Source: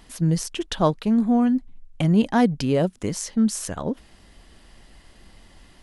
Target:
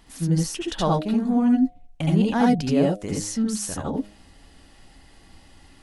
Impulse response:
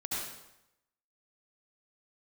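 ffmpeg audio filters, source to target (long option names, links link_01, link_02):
-filter_complex "[0:a]bandreject=frequency=103.2:width_type=h:width=4,bandreject=frequency=206.4:width_type=h:width=4,bandreject=frequency=309.6:width_type=h:width=4,bandreject=frequency=412.8:width_type=h:width=4,bandreject=frequency=516:width_type=h:width=4,bandreject=frequency=619.2:width_type=h:width=4,bandreject=frequency=722.4:width_type=h:width=4[link_01];[1:a]atrim=start_sample=2205,atrim=end_sample=3969[link_02];[link_01][link_02]afir=irnorm=-1:irlink=0"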